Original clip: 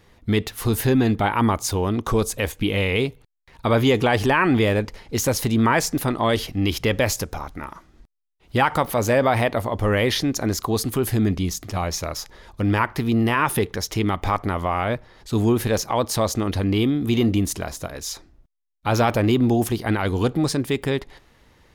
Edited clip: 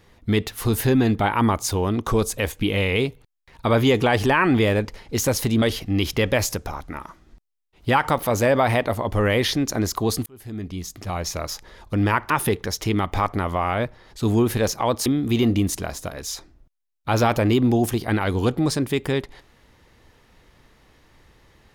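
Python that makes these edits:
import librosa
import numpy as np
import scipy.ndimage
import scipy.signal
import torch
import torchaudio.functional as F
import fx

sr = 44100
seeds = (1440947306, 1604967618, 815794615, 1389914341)

y = fx.edit(x, sr, fx.cut(start_s=5.62, length_s=0.67),
    fx.fade_in_span(start_s=10.93, length_s=1.19),
    fx.cut(start_s=12.97, length_s=0.43),
    fx.cut(start_s=16.16, length_s=0.68), tone=tone)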